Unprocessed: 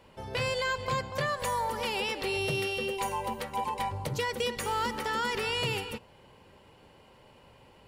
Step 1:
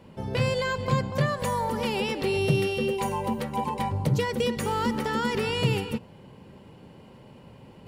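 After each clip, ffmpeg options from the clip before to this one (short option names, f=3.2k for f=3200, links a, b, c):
-af "equalizer=f=180:t=o:w=2.2:g=14,areverse,acompressor=mode=upward:threshold=-45dB:ratio=2.5,areverse"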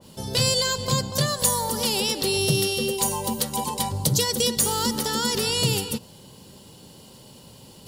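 -af "aexciter=amount=7.2:drive=7.2:freq=3.4k,adynamicequalizer=threshold=0.02:dfrequency=2100:dqfactor=0.7:tfrequency=2100:tqfactor=0.7:attack=5:release=100:ratio=0.375:range=2:mode=cutabove:tftype=highshelf"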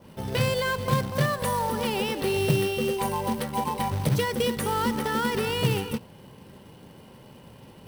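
-af "highshelf=f=3.2k:t=q:w=1.5:g=-14,acrusher=bits=3:mode=log:mix=0:aa=0.000001,bandreject=f=7k:w=7"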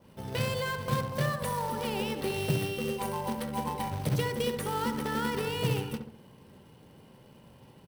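-filter_complex "[0:a]aeval=exprs='0.299*(cos(1*acos(clip(val(0)/0.299,-1,1)))-cos(1*PI/2))+0.00841*(cos(7*acos(clip(val(0)/0.299,-1,1)))-cos(7*PI/2))':c=same,asplit=2[a][b];[b]adelay=68,lowpass=f=1.4k:p=1,volume=-6dB,asplit=2[c][d];[d]adelay=68,lowpass=f=1.4k:p=1,volume=0.49,asplit=2[e][f];[f]adelay=68,lowpass=f=1.4k:p=1,volume=0.49,asplit=2[g][h];[h]adelay=68,lowpass=f=1.4k:p=1,volume=0.49,asplit=2[i][j];[j]adelay=68,lowpass=f=1.4k:p=1,volume=0.49,asplit=2[k][l];[l]adelay=68,lowpass=f=1.4k:p=1,volume=0.49[m];[a][c][e][g][i][k][m]amix=inputs=7:normalize=0,volume=-5.5dB"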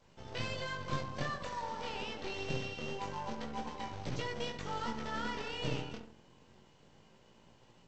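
-filter_complex "[0:a]flanger=delay=17.5:depth=7:speed=0.26,acrossover=split=810|1200[a][b][c];[a]aeval=exprs='max(val(0),0)':c=same[d];[d][b][c]amix=inputs=3:normalize=0,volume=-2dB" -ar 16000 -c:a pcm_alaw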